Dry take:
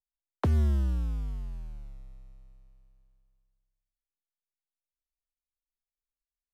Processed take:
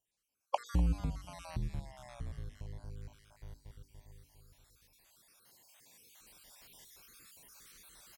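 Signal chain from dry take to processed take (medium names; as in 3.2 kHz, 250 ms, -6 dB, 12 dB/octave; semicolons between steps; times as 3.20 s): random holes in the spectrogram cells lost 49%; recorder AGC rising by 6.7 dB/s; treble shelf 3.2 kHz +10 dB; compression 2:1, threshold -44 dBFS, peak gain reduction 11 dB; high-pass 120 Hz 12 dB/octave; tilt EQ -2 dB/octave; hum notches 60/120/180/240/300/360/420/480/540/600 Hz; feedback delay 197 ms, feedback 48%, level -19 dB; tape speed -20%; trim +9 dB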